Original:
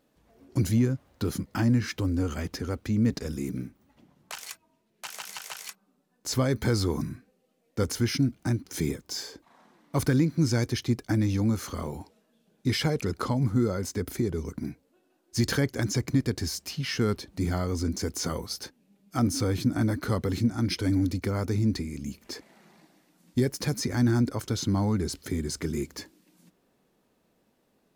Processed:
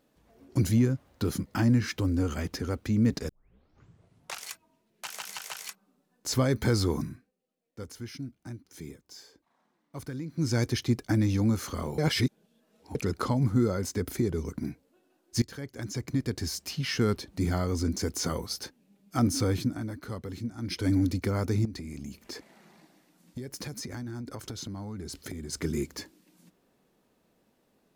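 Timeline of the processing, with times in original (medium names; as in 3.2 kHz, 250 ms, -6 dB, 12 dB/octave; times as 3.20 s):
3.29 s: tape start 1.17 s
6.93–10.62 s: dip -14 dB, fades 0.38 s
11.98–12.95 s: reverse
15.42–16.73 s: fade in linear, from -23 dB
19.53–20.89 s: dip -10 dB, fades 0.28 s
21.65–25.53 s: compression 10:1, threshold -34 dBFS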